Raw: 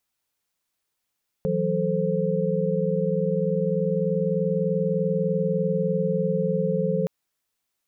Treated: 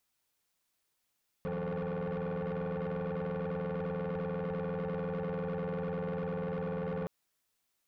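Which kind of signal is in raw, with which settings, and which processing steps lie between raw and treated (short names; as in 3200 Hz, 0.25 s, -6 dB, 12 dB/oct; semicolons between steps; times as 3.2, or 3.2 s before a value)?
chord E3/F#3/A4/C5 sine, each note -26.5 dBFS 5.62 s
limiter -21 dBFS; soft clip -33.5 dBFS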